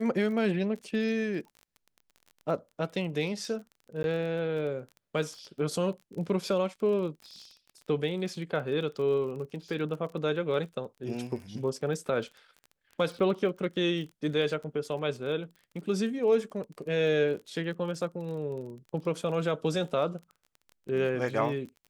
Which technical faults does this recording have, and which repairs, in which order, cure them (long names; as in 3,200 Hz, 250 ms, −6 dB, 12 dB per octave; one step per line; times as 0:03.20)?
surface crackle 28 per second −39 dBFS
0:04.03–0:04.04: drop-out 11 ms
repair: click removal
repair the gap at 0:04.03, 11 ms